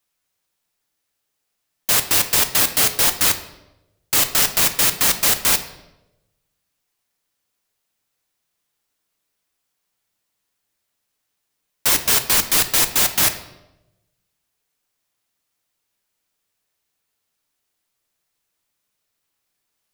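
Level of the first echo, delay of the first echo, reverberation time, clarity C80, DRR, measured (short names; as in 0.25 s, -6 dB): none, none, 0.95 s, 14.0 dB, 7.5 dB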